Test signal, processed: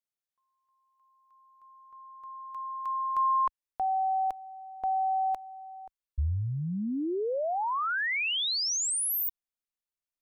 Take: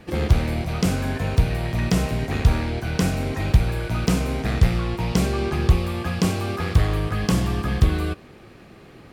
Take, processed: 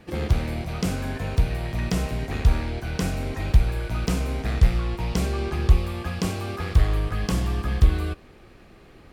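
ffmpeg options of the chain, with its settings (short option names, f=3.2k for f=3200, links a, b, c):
-af "asubboost=boost=3.5:cutoff=62,volume=-4dB"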